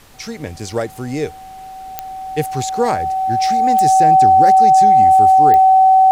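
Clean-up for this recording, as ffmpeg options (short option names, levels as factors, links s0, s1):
-af "adeclick=t=4,bandreject=f=760:w=30,agate=range=0.0891:threshold=0.0447"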